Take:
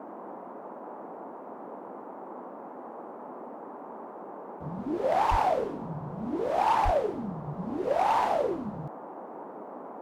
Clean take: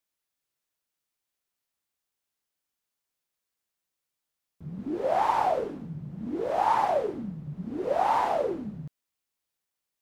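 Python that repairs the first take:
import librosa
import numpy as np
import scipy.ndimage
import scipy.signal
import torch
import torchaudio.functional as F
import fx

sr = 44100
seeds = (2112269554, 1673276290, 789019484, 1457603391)

y = fx.fix_declip(x, sr, threshold_db=-18.5)
y = fx.fix_deplosive(y, sr, at_s=(5.3, 6.84))
y = fx.noise_reduce(y, sr, print_start_s=2.48, print_end_s=2.98, reduce_db=30.0)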